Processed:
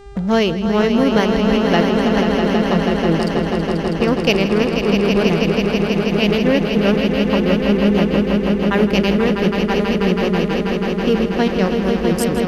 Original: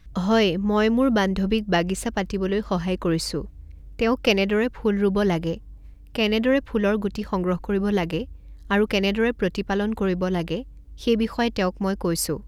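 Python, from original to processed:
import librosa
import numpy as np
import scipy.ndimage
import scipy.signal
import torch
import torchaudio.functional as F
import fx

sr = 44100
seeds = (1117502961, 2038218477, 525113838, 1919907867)

y = fx.wiener(x, sr, points=41)
y = fx.echo_swell(y, sr, ms=162, loudest=5, wet_db=-7.0)
y = fx.dmg_buzz(y, sr, base_hz=400.0, harmonics=23, level_db=-46.0, tilt_db=-8, odd_only=False)
y = y * 10.0 ** (4.0 / 20.0)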